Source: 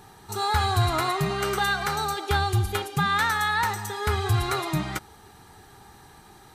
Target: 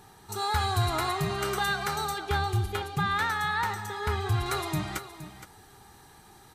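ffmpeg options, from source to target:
-af "asetnsamples=n=441:p=0,asendcmd='2.18 equalizer g -5;4.46 equalizer g 3.5',equalizer=f=11k:w=0.39:g=2,aecho=1:1:468:0.224,volume=-4dB"

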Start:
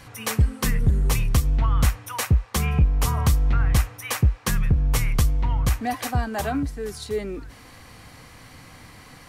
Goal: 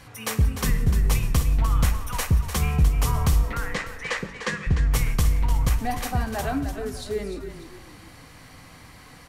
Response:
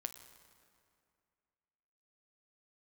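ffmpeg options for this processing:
-filter_complex "[0:a]asettb=1/sr,asplit=3[a][b][c];[a]atrim=end=3.434[d];[b]atrim=start=3.43:end=4.67,asetpts=PTS-STARTPTS,afade=t=in:d=0.004:c=qsin,afade=t=out:st=1.236:d=0.004:c=qsin,highpass=f=200:w=0.5412,highpass=f=200:w=1.3066,equalizer=f=280:t=q:w=4:g=-3,equalizer=f=510:t=q:w=4:g=7,equalizer=f=730:t=q:w=4:g=-5,equalizer=f=1.9k:t=q:w=4:g=9,equalizer=f=5.8k:t=q:w=4:g=-5,lowpass=f=6.7k:w=0.5412,lowpass=f=6.7k:w=1.3066[e];[c]atrim=start=4.666[f];[d][e]acrossfade=d=0.004:c1=hsin:c2=qsin[g];[g][f]acrossfade=d=0.004:c1=qsin:c2=hsin,asplit=5[h][i][j][k][l];[i]adelay=299,afreqshift=-32,volume=-9.5dB[m];[j]adelay=598,afreqshift=-64,volume=-18.4dB[n];[k]adelay=897,afreqshift=-96,volume=-27.2dB[o];[l]adelay=1196,afreqshift=-128,volume=-36.1dB[p];[h][m][n][o][p]amix=inputs=5:normalize=0[q];[1:a]atrim=start_sample=2205,afade=t=out:st=0.21:d=0.01,atrim=end_sample=9702,asetrate=39249,aresample=44100[r];[q][r]afir=irnorm=-1:irlink=0"

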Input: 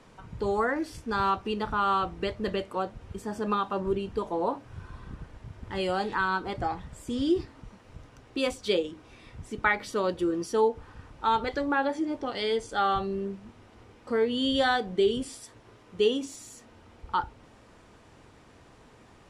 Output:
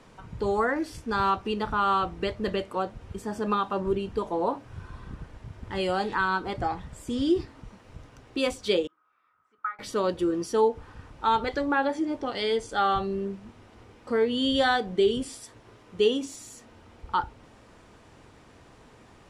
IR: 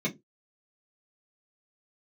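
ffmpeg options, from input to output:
-filter_complex "[0:a]asettb=1/sr,asplit=3[a][b][c];[a]atrim=end=8.874[d];[b]atrim=start=8.87:end=9.79,asetpts=PTS-STARTPTS,afade=t=in:d=0.004:c=qsin,afade=t=out:st=0.916:d=0.004:c=qsin,bandpass=f=1.3k:t=q:w=15:csg=0[e];[c]atrim=start=9.786[f];[d][e]acrossfade=d=0.004:c1=hsin:c2=qsin[g];[g][f]acrossfade=d=0.004:c1=qsin:c2=hsin,volume=1.5dB"

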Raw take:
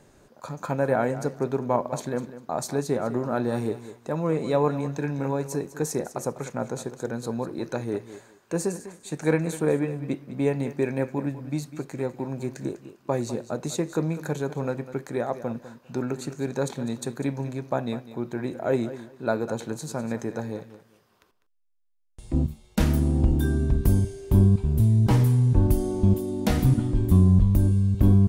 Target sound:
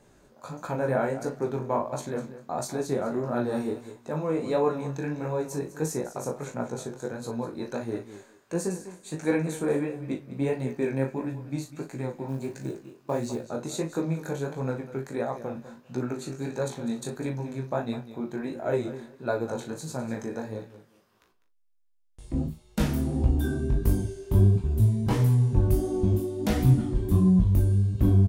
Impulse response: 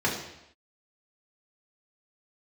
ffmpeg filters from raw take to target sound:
-filter_complex "[0:a]asplit=2[a][b];[b]adelay=38,volume=-8dB[c];[a][c]amix=inputs=2:normalize=0,flanger=delay=16:depth=6.5:speed=1.5,asettb=1/sr,asplit=3[d][e][f];[d]atrim=end=12.284[g];[e]atrim=start=12.28:end=13.45,asetpts=PTS-STARTPTS,afade=t=in:d=0.004:c=qsin,afade=t=out:st=1.166:d=0.004:c=qsin,acrusher=bits=8:mode=log:mix=0:aa=0.000001[h];[f]atrim=start=13.446[i];[g][h]acrossfade=d=0.004:c1=hsin:c2=qsin[j];[j][i]acrossfade=d=0.004:c1=qsin:c2=hsin"

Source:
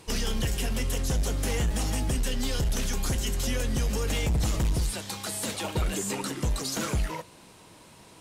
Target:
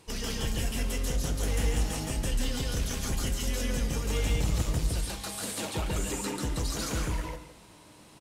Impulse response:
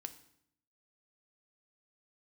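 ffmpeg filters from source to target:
-filter_complex "[0:a]aecho=1:1:165:0.211,asplit=2[a][b];[1:a]atrim=start_sample=2205,adelay=141[c];[b][c]afir=irnorm=-1:irlink=0,volume=5dB[d];[a][d]amix=inputs=2:normalize=0,volume=-6dB"

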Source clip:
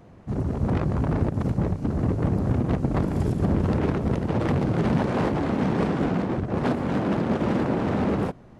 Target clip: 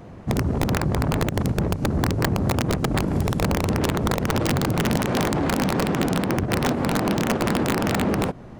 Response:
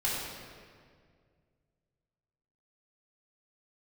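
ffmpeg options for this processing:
-af "acompressor=threshold=-27dB:ratio=5,aeval=exprs='(mod(11.9*val(0)+1,2)-1)/11.9':c=same,volume=8dB"

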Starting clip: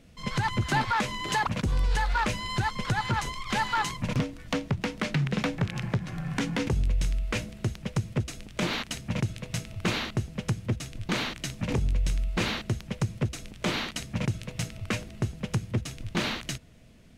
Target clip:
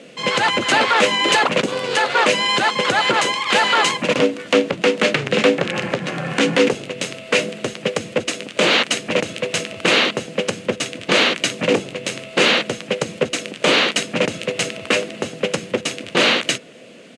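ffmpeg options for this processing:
-filter_complex "[0:a]apsyclip=26.5dB,highpass=f=220:w=0.5412,highpass=f=220:w=1.3066,equalizer=f=230:t=q:w=4:g=-3,equalizer=f=520:t=q:w=4:g=9,equalizer=f=920:t=q:w=4:g=-4,equalizer=f=2.8k:t=q:w=4:g=5,equalizer=f=5.5k:t=q:w=4:g=-5,lowpass=f=9.2k:w=0.5412,lowpass=f=9.2k:w=1.3066,asplit=2[a][b];[b]asetrate=35002,aresample=44100,atempo=1.25992,volume=-10dB[c];[a][c]amix=inputs=2:normalize=0,volume=-10.5dB"

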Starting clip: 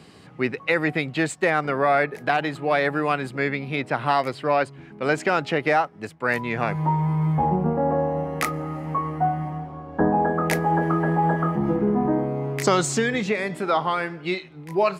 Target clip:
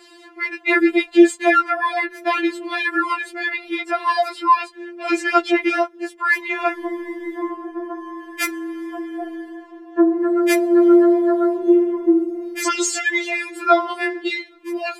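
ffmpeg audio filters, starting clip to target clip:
-af "afreqshift=19,afftfilt=real='re*4*eq(mod(b,16),0)':imag='im*4*eq(mod(b,16),0)':win_size=2048:overlap=0.75,volume=7dB"

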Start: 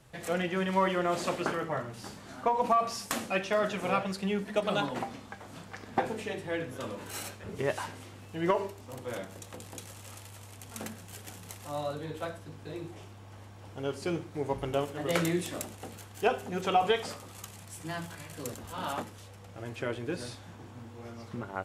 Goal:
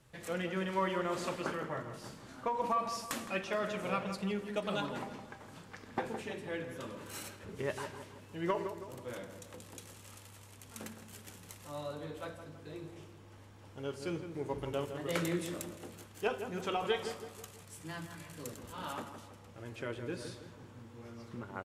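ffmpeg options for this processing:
-filter_complex "[0:a]equalizer=f=720:w=5.5:g=-7,asplit=2[a][b];[b]adelay=163,lowpass=f=2k:p=1,volume=-8.5dB,asplit=2[c][d];[d]adelay=163,lowpass=f=2k:p=1,volume=0.48,asplit=2[e][f];[f]adelay=163,lowpass=f=2k:p=1,volume=0.48,asplit=2[g][h];[h]adelay=163,lowpass=f=2k:p=1,volume=0.48,asplit=2[i][j];[j]adelay=163,lowpass=f=2k:p=1,volume=0.48[k];[a][c][e][g][i][k]amix=inputs=6:normalize=0,volume=-5.5dB"

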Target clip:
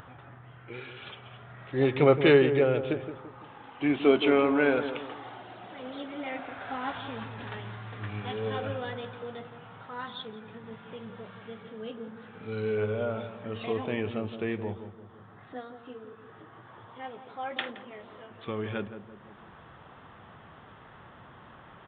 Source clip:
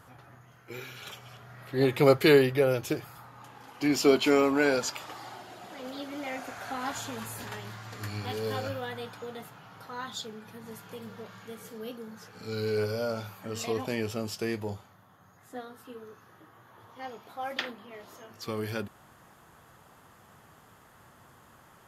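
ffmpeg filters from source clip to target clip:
-filter_complex "[0:a]asplit=2[a][b];[b]adelay=170,lowpass=f=1k:p=1,volume=-9dB,asplit=2[c][d];[d]adelay=170,lowpass=f=1k:p=1,volume=0.45,asplit=2[e][f];[f]adelay=170,lowpass=f=1k:p=1,volume=0.45,asplit=2[g][h];[h]adelay=170,lowpass=f=1k:p=1,volume=0.45,asplit=2[i][j];[j]adelay=170,lowpass=f=1k:p=1,volume=0.45[k];[a][c][e][g][i][k]amix=inputs=6:normalize=0,aresample=8000,aresample=44100,acompressor=mode=upward:threshold=-43dB:ratio=2.5"

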